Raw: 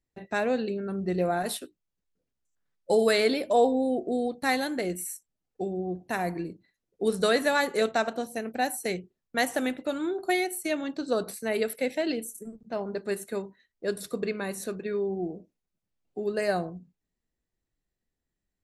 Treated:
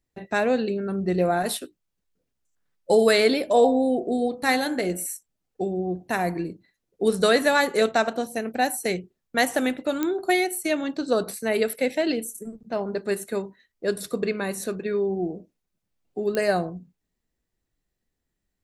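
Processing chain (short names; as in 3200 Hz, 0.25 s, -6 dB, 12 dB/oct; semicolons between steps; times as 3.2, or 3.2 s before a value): 3.43–5.06 de-hum 54.94 Hz, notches 31; pops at 10.03/16.35, -16 dBFS; gain +4.5 dB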